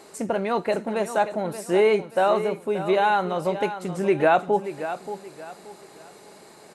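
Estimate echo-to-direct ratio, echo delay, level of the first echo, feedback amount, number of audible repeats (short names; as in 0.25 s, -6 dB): -11.0 dB, 0.579 s, -11.5 dB, 32%, 3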